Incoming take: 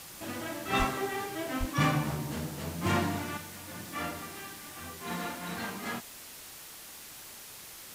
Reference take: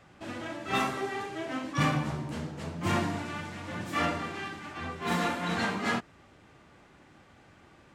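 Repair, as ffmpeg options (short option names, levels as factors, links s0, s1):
-filter_complex "[0:a]asplit=3[s0][s1][s2];[s0]afade=t=out:st=0.78:d=0.02[s3];[s1]highpass=f=140:w=0.5412,highpass=f=140:w=1.3066,afade=t=in:st=0.78:d=0.02,afade=t=out:st=0.9:d=0.02[s4];[s2]afade=t=in:st=0.9:d=0.02[s5];[s3][s4][s5]amix=inputs=3:normalize=0,asplit=3[s6][s7][s8];[s6]afade=t=out:st=1.59:d=0.02[s9];[s7]highpass=f=140:w=0.5412,highpass=f=140:w=1.3066,afade=t=in:st=1.59:d=0.02,afade=t=out:st=1.71:d=0.02[s10];[s8]afade=t=in:st=1.71:d=0.02[s11];[s9][s10][s11]amix=inputs=3:normalize=0,afwtdn=0.005,asetnsamples=n=441:p=0,asendcmd='3.37 volume volume 7.5dB',volume=1"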